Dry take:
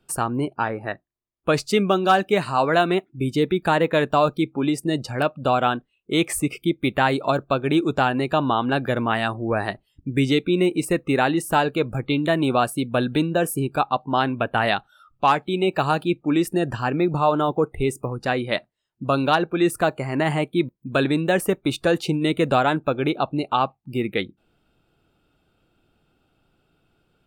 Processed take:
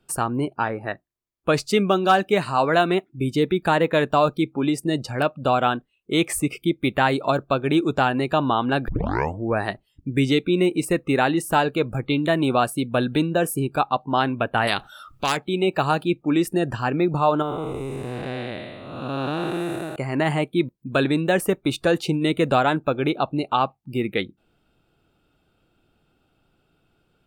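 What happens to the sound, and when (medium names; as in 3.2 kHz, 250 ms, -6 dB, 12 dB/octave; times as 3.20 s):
8.88 s: tape start 0.55 s
14.67–15.37 s: spectrum-flattening compressor 2:1
17.42–19.96 s: spectral blur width 433 ms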